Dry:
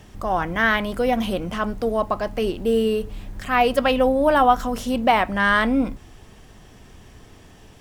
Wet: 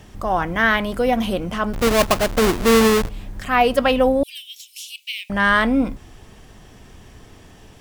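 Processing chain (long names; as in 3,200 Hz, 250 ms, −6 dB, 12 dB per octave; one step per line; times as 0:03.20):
0:01.73–0:03.09: each half-wave held at its own peak
0:04.23–0:05.30: Butterworth high-pass 2,400 Hz 72 dB per octave
level +2 dB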